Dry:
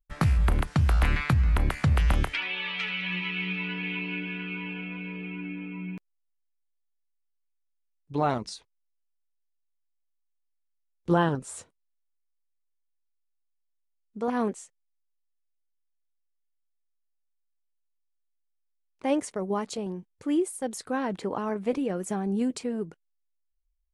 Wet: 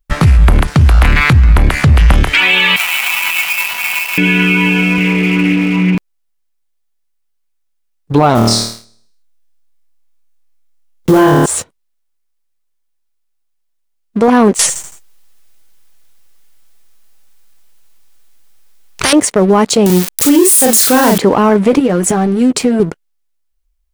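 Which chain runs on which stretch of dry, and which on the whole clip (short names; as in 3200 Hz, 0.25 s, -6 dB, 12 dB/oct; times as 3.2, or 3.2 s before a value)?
2.76–4.18 median filter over 25 samples + steep high-pass 770 Hz + high shelf 4900 Hz +9 dB
4.98–5.95 HPF 50 Hz 24 dB/oct + Doppler distortion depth 0.12 ms
8.35–11.46 block floating point 5-bit + flutter echo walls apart 4.5 m, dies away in 0.69 s
14.59–19.13 feedback echo 82 ms, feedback 48%, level -18 dB + spectral compressor 10:1
19.86–21.18 switching spikes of -24 dBFS + doubler 39 ms -2.5 dB
21.79–22.8 compressor 10:1, threshold -33 dBFS + doubler 12 ms -7.5 dB
whole clip: compressor, threshold -24 dBFS; sample leveller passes 2; maximiser +18 dB; gain -1 dB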